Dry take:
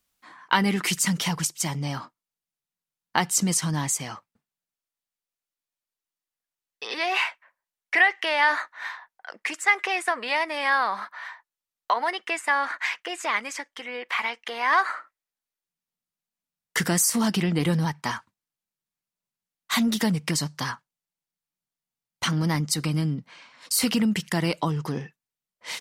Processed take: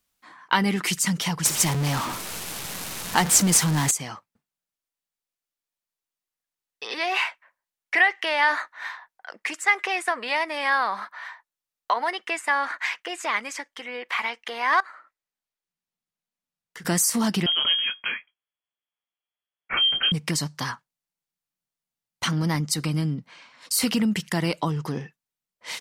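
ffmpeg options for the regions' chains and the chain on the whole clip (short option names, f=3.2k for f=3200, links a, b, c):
-filter_complex "[0:a]asettb=1/sr,asplit=3[a][b][c];[a]atrim=end=1.454[d];[b]atrim=start=1.45:end=3.91,asetpts=PTS-STARTPTS,afade=t=in:d=0.004:c=qsin,afade=t=out:st=2.456:d=0.004:c=qsin,aeval=exprs='val(0)+0.5*0.0668*sgn(val(0))':c=same,equalizer=f=14k:t=o:w=1.1:g=14,adynamicsmooth=sensitivity=6:basefreq=1.7k[e];[c]atrim=start=3.906[f];[d][e]acrossfade=d=0.004:c1=hsin:c2=qsin[g];[g][f]acrossfade=d=0.004:c1=qsin:c2=hsin,asettb=1/sr,asplit=3[h][i][j];[h]atrim=end=14.804[k];[i]atrim=start=14.8:end=16.85,asetpts=PTS-STARTPTS,afade=t=in:d=0.004:c=qsin,afade=t=out:st=2.046:d=0.004:c=qsin,highshelf=f=7.7k:g=-7,acompressor=threshold=-47dB:ratio=2.5:attack=3.2:release=140:knee=1:detection=peak[l];[j]atrim=start=16.846[m];[k][l]acrossfade=d=0.004:c1=hsin:c2=qsin[n];[n][m]acrossfade=d=0.004:c1=qsin:c2=hsin,asettb=1/sr,asplit=3[o][p][q];[o]atrim=end=17.464[r];[p]atrim=start=17.46:end=20.12,asetpts=PTS-STARTPTS,afade=t=in:d=0.004:c=qsin,afade=t=out:st=2.656:d=0.004:c=qsin,lowpass=f=2.9k:t=q:w=0.5098,lowpass=f=2.9k:t=q:w=0.6013,lowpass=f=2.9k:t=q:w=0.9,lowpass=f=2.9k:t=q:w=2.563,afreqshift=-3400,asplit=2[s][t];[t]adelay=23,volume=-11dB[u];[s][u]amix=inputs=2:normalize=0,atrim=end_sample=117306[v];[q]atrim=start=20.116[w];[r][v]acrossfade=d=0.004:c1=hsin:c2=qsin[x];[x][w]acrossfade=d=0.004:c1=qsin:c2=hsin"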